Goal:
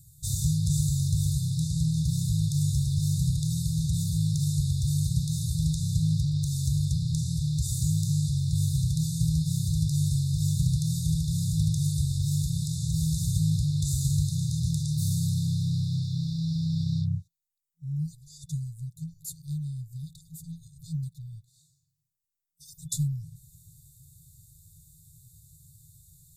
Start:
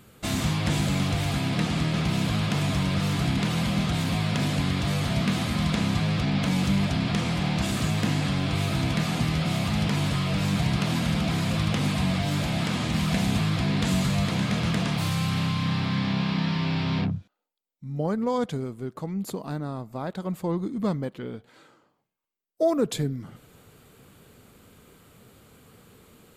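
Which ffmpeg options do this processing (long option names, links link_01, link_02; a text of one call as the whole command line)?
ffmpeg -i in.wav -af "afftfilt=real='re*(1-between(b*sr/4096,170,3500))':imag='im*(1-between(b*sr/4096,170,3500))':win_size=4096:overlap=0.75,equalizer=frequency=250:width_type=o:width=1:gain=-6,equalizer=frequency=500:width_type=o:width=1:gain=11,equalizer=frequency=2000:width_type=o:width=1:gain=-8,equalizer=frequency=4000:width_type=o:width=1:gain=-9,equalizer=frequency=8000:width_type=o:width=1:gain=4,volume=3dB" out.wav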